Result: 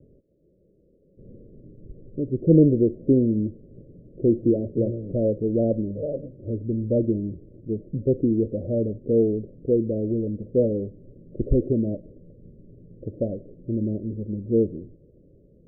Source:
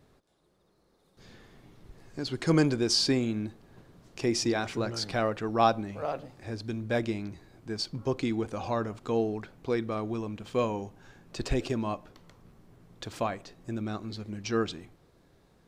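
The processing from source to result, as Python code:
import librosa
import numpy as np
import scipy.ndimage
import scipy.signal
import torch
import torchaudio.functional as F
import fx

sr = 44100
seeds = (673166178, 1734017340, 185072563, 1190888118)

y = scipy.signal.sosfilt(scipy.signal.butter(16, 590.0, 'lowpass', fs=sr, output='sos'), x)
y = y * librosa.db_to_amplitude(8.5)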